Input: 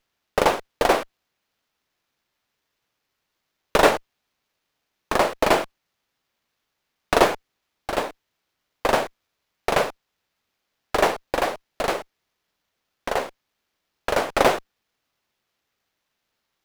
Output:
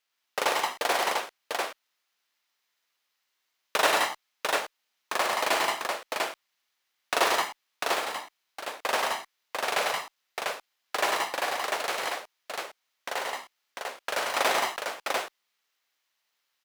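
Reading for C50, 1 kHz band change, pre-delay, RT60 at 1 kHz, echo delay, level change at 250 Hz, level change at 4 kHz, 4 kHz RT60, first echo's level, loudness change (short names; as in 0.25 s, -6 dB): none, -3.5 dB, none, none, 48 ms, -12.5 dB, +1.0 dB, none, -7.5 dB, -6.0 dB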